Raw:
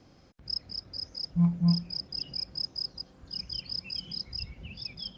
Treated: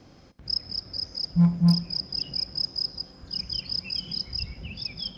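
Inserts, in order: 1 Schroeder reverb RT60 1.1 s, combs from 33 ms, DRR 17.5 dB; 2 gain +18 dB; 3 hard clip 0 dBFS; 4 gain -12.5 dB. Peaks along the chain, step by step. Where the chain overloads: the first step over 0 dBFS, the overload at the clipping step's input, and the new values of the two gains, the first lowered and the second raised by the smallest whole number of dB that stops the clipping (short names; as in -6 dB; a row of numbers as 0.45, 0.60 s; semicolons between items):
-15.0, +3.0, 0.0, -12.5 dBFS; step 2, 3.0 dB; step 2 +15 dB, step 4 -9.5 dB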